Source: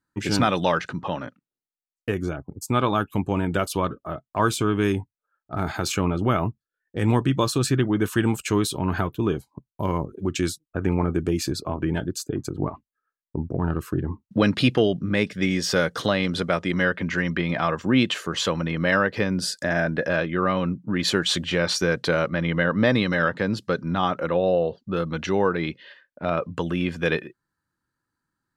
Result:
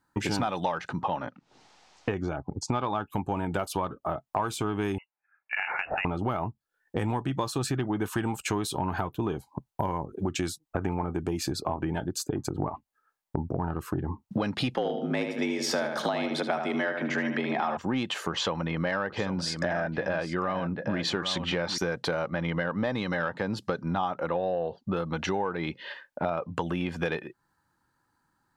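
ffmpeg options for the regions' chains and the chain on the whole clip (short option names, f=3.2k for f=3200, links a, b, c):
-filter_complex "[0:a]asettb=1/sr,asplit=3[a][b][c];[a]atrim=end=1.054[d];[b]atrim=start=1.05:end=3.07,asetpts=PTS-STARTPTS,afade=t=in:d=0.004:c=qsin,afade=t=out:st=2.016:d=0.004:c=qsin,lowpass=f=6k:w=0.5412,lowpass=f=6k:w=1.3066,acompressor=mode=upward:threshold=-39dB:ratio=2.5:attack=3.2:release=140:knee=2.83:detection=peak[e];[c]atrim=start=3.066[f];[d][e]acrossfade=d=0.004:c1=hsin:c2=qsin[g];[g][f]acrossfade=d=0.004:c1=qsin:c2=hsin,asettb=1/sr,asplit=3[h][i][j];[h]atrim=end=4.984[k];[i]atrim=start=4.98:end=6.05,asetpts=PTS-STARTPTS,afade=t=in:d=0.004:c=qsin,afade=t=out:st=1.066:d=0.004:c=qsin,highpass=260,lowshelf=f=420:g=-10,lowpass=f=2.6k:t=q:w=0.5098,lowpass=f=2.6k:t=q:w=0.6013,lowpass=f=2.6k:t=q:w=0.9,lowpass=f=2.6k:t=q:w=2.563,afreqshift=-3000[l];[j]atrim=start=6.046[m];[k][l]acrossfade=d=0.004:c1=hsin:c2=qsin[n];[n][m]acrossfade=d=0.004:c1=qsin:c2=hsin,asettb=1/sr,asplit=3[o][p][q];[o]atrim=end=14.744[r];[p]atrim=start=14.74:end=17.77,asetpts=PTS-STARTPTS,afade=t=in:d=0.004:c=qsin,afade=t=out:st=3.026:d=0.004:c=qsin,afreqshift=59,asplit=2[s][t];[t]adelay=76,lowpass=f=4.3k:p=1,volume=-7dB,asplit=2[u][v];[v]adelay=76,lowpass=f=4.3k:p=1,volume=0.42,asplit=2[w][x];[x]adelay=76,lowpass=f=4.3k:p=1,volume=0.42,asplit=2[y][z];[z]adelay=76,lowpass=f=4.3k:p=1,volume=0.42,asplit=2[aa][ab];[ab]adelay=76,lowpass=f=4.3k:p=1,volume=0.42[ac];[s][u][w][y][aa][ac]amix=inputs=6:normalize=0,atrim=end_sample=133623[ad];[q]atrim=start=17.766[ae];[r][ad]acrossfade=d=0.004:c1=hsin:c2=qsin[af];[af][ae]acrossfade=d=0.004:c1=qsin:c2=hsin,asettb=1/sr,asplit=3[ag][ah][ai];[ag]atrim=end=18.304[aj];[ah]atrim=start=18.3:end=21.78,asetpts=PTS-STARTPTS,afade=t=in:d=0.004:c=qsin,afade=t=out:st=3.476:d=0.004:c=qsin,lowpass=5.9k,aecho=1:1:796:0.266,atrim=end_sample=153468[ak];[ai]atrim=start=21.776[al];[aj][ak]acrossfade=d=0.004:c1=hsin:c2=qsin[am];[am][al]acrossfade=d=0.004:c1=qsin:c2=hsin,acontrast=56,equalizer=f=830:t=o:w=0.64:g=10.5,acompressor=threshold=-27dB:ratio=6"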